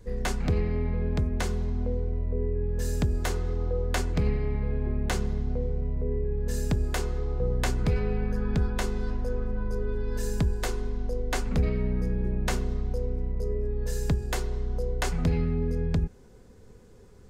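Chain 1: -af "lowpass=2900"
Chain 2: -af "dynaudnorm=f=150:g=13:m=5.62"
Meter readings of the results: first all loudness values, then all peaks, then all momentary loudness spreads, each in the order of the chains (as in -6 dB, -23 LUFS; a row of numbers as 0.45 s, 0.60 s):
-30.0 LUFS, -17.0 LUFS; -15.5 dBFS, -2.5 dBFS; 5 LU, 5 LU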